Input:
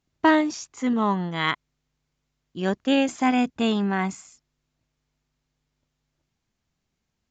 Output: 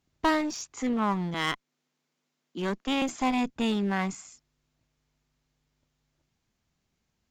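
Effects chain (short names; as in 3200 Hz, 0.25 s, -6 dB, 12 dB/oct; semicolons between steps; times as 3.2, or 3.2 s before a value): 1.34–3.02 steep high-pass 180 Hz 36 dB/oct; in parallel at -3 dB: compressor, threshold -34 dBFS, peak gain reduction 19 dB; on the sum: one-sided clip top -28 dBFS; gain -3.5 dB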